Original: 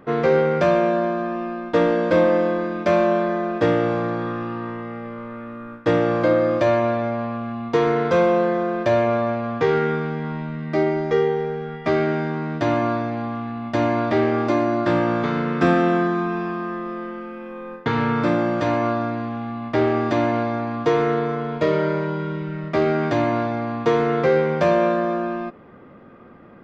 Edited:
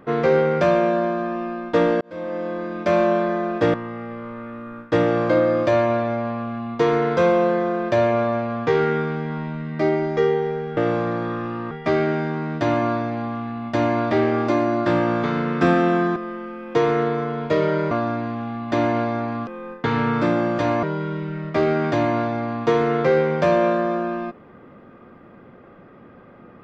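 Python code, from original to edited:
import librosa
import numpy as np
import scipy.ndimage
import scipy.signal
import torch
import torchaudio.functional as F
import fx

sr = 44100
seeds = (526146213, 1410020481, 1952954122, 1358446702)

y = fx.edit(x, sr, fx.fade_in_span(start_s=2.01, length_s=0.99),
    fx.move(start_s=3.74, length_s=0.94, to_s=11.71),
    fx.cut(start_s=16.16, length_s=0.74),
    fx.swap(start_s=17.49, length_s=1.36, other_s=20.86, other_length_s=1.16),
    fx.cut(start_s=19.66, length_s=0.45), tone=tone)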